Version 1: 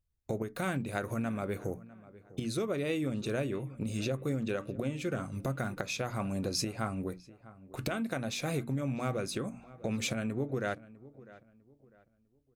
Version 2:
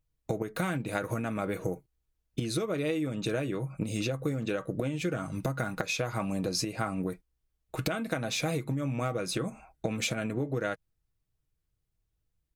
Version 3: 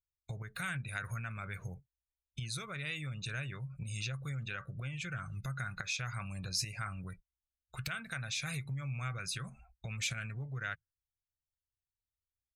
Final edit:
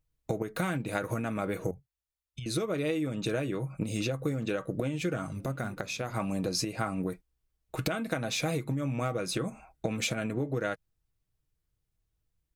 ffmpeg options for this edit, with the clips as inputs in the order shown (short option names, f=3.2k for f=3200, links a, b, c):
-filter_complex "[1:a]asplit=3[a][b][c];[a]atrim=end=1.712[d];[2:a]atrim=start=1.708:end=2.462[e];[b]atrim=start=2.458:end=5.332[f];[0:a]atrim=start=5.328:end=6.142[g];[c]atrim=start=6.138[h];[d][e]acrossfade=d=0.004:c1=hsin:c2=hsin[i];[i][f]acrossfade=d=0.004:c1=hsin:c2=hsin[j];[j][g]acrossfade=d=0.004:c1=hsin:c2=hsin[k];[k][h]acrossfade=d=0.004:c1=hsin:c2=hsin"